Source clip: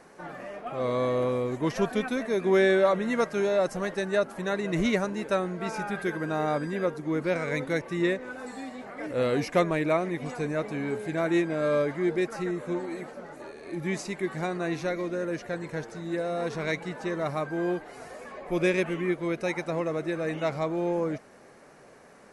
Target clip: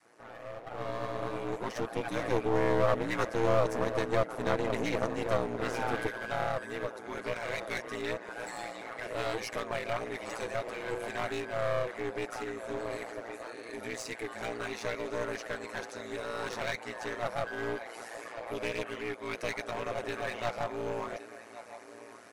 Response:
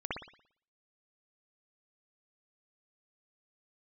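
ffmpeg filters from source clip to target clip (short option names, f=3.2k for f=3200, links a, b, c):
-filter_complex "[0:a]aecho=1:1:5.1:0.97,asplit=2[a][b];[b]adelay=1114,lowpass=f=2.2k:p=1,volume=-16dB,asplit=2[c][d];[d]adelay=1114,lowpass=f=2.2k:p=1,volume=0.52,asplit=2[e][f];[f]adelay=1114,lowpass=f=2.2k:p=1,volume=0.52,asplit=2[g][h];[h]adelay=1114,lowpass=f=2.2k:p=1,volume=0.52,asplit=2[i][j];[j]adelay=1114,lowpass=f=2.2k:p=1,volume=0.52[k];[a][c][e][g][i][k]amix=inputs=6:normalize=0,alimiter=limit=-19.5dB:level=0:latency=1:release=332,aeval=exprs='val(0)*sin(2*PI*58*n/s)':c=same,asetnsamples=n=441:p=0,asendcmd='6.07 highpass f 1400',highpass=f=430:p=1,adynamicequalizer=threshold=0.00398:dfrequency=550:dqfactor=0.78:tfrequency=550:tqfactor=0.78:attack=5:release=100:ratio=0.375:range=3.5:mode=boostabove:tftype=bell,aeval=exprs='clip(val(0),-1,0.01)':c=same,dynaudnorm=f=350:g=9:m=10.5dB,volume=-7dB"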